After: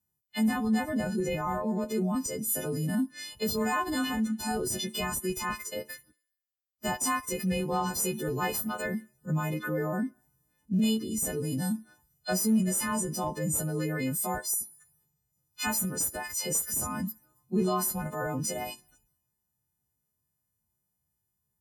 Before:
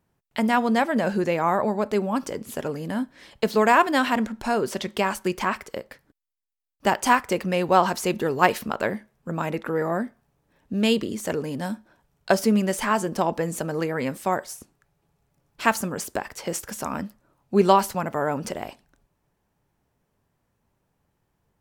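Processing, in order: partials quantised in pitch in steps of 3 st; tone controls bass +8 dB, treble +6 dB; transient shaper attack -8 dB, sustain +4 dB; in parallel at -4 dB: Schmitt trigger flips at -13.5 dBFS; on the sum: compression 5:1, threshold -30 dBFS, peak gain reduction 17.5 dB; high-pass 47 Hz; on a send: thinning echo 68 ms, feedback 66%, high-pass 300 Hz, level -17 dB; on the sum: spectral contrast expander 1.5:1

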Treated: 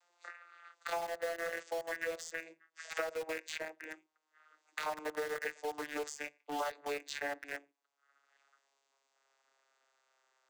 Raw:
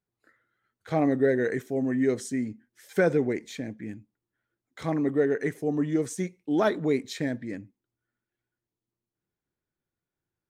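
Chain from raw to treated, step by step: vocoder on a note that slides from F3, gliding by -5 st; high-pass 700 Hz 24 dB/octave; treble shelf 4.6 kHz +9 dB; compression 5:1, threshold -44 dBFS, peak gain reduction 14 dB; in parallel at -6 dB: bit crusher 8-bit; on the sum: three bands compressed up and down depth 70%; trim +6.5 dB

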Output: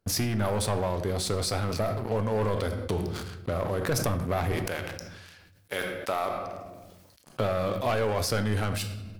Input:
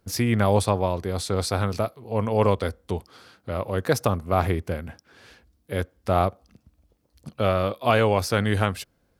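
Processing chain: 4.52–7.38 s: high-pass 1.3 kHz 6 dB/octave; waveshaping leveller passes 3; compression 4:1, threshold -23 dBFS, peak gain reduction 11.5 dB; simulated room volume 200 m³, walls mixed, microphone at 0.33 m; decay stretcher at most 34 dB/s; trim -4.5 dB

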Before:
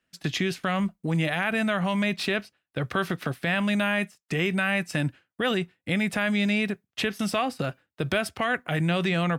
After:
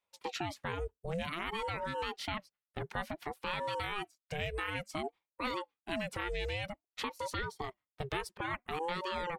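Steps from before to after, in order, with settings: reverb removal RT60 0.58 s; ring modulator with a swept carrier 500 Hz, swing 50%, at 0.55 Hz; trim -8 dB

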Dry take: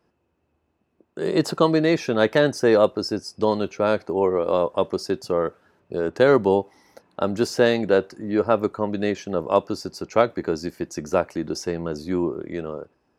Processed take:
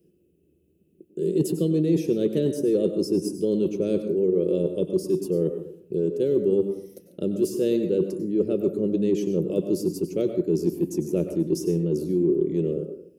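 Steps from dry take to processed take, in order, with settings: FFT filter 120 Hz 0 dB, 170 Hz +13 dB, 240 Hz +2 dB, 370 Hz +12 dB, 560 Hz -3 dB, 900 Hz -30 dB, 1.9 kHz -17 dB, 2.9 kHz -1 dB, 4.5 kHz -8 dB, 11 kHz +12 dB; reverse; compression 6:1, threshold -20 dBFS, peak gain reduction 14 dB; reverse; plate-style reverb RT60 0.59 s, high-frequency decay 0.45×, pre-delay 85 ms, DRR 6.5 dB

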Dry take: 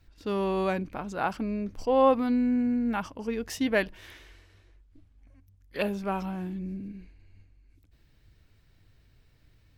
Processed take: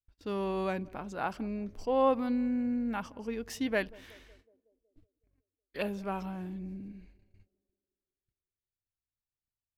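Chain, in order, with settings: gate -52 dBFS, range -35 dB; on a send: band-passed feedback delay 185 ms, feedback 61%, band-pass 410 Hz, level -22 dB; on the sum: trim -5 dB

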